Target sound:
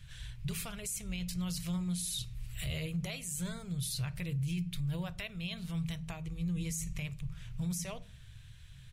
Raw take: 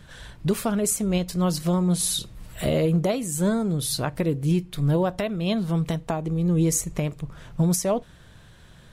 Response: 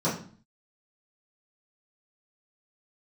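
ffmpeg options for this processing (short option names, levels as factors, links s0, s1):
-filter_complex "[0:a]firequalizer=gain_entry='entry(130,0);entry(220,-27);entry(2400,-2);entry(3400,-5)':delay=0.05:min_phase=1,asplit=2[s0][s1];[1:a]atrim=start_sample=2205[s2];[s1][s2]afir=irnorm=-1:irlink=0,volume=0.0473[s3];[s0][s3]amix=inputs=2:normalize=0,alimiter=level_in=1.68:limit=0.0631:level=0:latency=1:release=14,volume=0.596"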